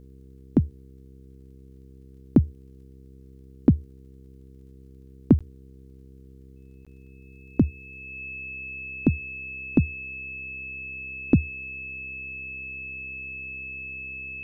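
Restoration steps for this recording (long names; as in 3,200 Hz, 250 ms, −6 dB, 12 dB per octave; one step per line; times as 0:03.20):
click removal
hum removal 66 Hz, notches 7
notch filter 2,600 Hz, Q 30
repair the gap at 0:05.39/0:06.85, 16 ms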